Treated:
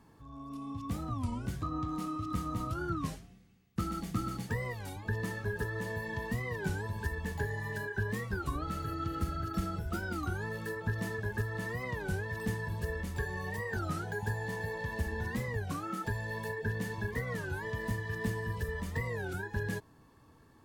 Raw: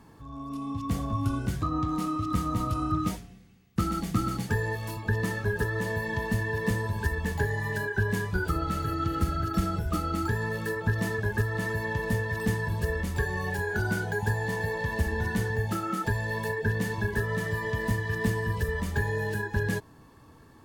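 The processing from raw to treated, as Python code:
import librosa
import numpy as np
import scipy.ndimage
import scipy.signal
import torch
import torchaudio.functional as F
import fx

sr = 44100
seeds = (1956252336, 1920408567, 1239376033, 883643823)

y = fx.record_warp(x, sr, rpm=33.33, depth_cents=250.0)
y = y * 10.0 ** (-7.0 / 20.0)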